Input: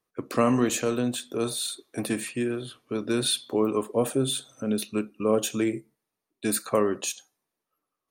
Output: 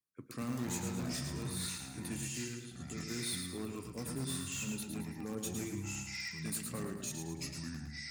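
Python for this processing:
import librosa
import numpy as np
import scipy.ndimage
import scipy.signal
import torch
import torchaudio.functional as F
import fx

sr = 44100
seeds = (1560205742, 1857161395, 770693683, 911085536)

p1 = fx.tone_stack(x, sr, knobs='6-0-2')
p2 = fx.echo_pitch(p1, sr, ms=162, semitones=-5, count=2, db_per_echo=-3.0)
p3 = (np.mod(10.0 ** (36.5 / 20.0) * p2 + 1.0, 2.0) - 1.0) / 10.0 ** (36.5 / 20.0)
p4 = p2 + F.gain(torch.from_numpy(p3), -10.0).numpy()
p5 = scipy.signal.sosfilt(scipy.signal.butter(2, 79.0, 'highpass', fs=sr, output='sos'), p4)
p6 = fx.peak_eq(p5, sr, hz=3100.0, db=-7.0, octaves=0.41)
p7 = fx.echo_feedback(p6, sr, ms=110, feedback_pct=45, wet_db=-6.0)
y = F.gain(torch.from_numpy(p7), 2.5).numpy()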